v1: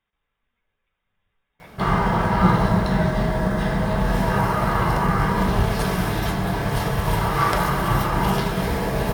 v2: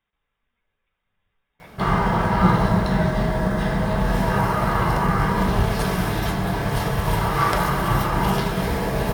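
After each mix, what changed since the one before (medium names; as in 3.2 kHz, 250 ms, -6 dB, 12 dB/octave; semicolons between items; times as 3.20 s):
no change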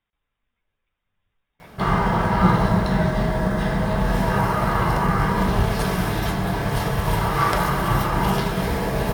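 speech: send -9.0 dB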